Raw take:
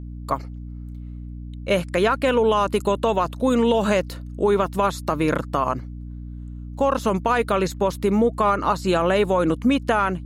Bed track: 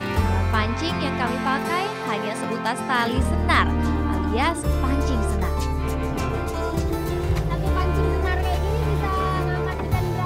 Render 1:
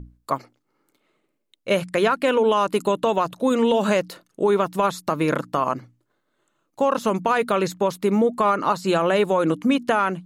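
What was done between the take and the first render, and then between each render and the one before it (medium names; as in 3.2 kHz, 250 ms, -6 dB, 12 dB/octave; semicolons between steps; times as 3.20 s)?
hum notches 60/120/180/240/300 Hz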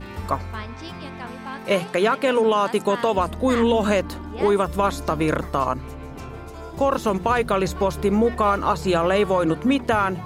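add bed track -11 dB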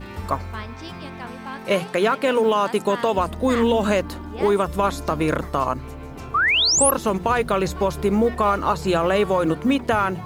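companded quantiser 8-bit; 6.34–6.91 s: painted sound rise 1.1–12 kHz -18 dBFS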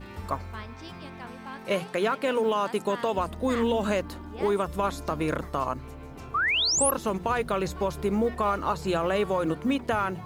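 trim -6.5 dB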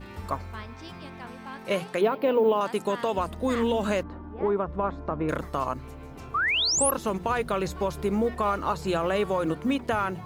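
2.01–2.61 s: FFT filter 170 Hz 0 dB, 350 Hz +5 dB, 880 Hz +2 dB, 1.5 kHz -7 dB, 2.7 kHz -4 dB, 4.7 kHz -7 dB, 8.2 kHz -27 dB, 14 kHz +8 dB; 4.03–5.29 s: low-pass 1.4 kHz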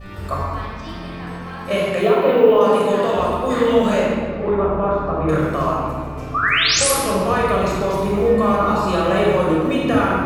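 simulated room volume 2900 m³, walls mixed, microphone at 6.1 m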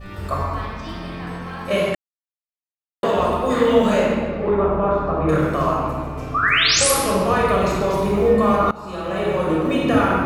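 1.95–3.03 s: mute; 8.71–9.83 s: fade in, from -20.5 dB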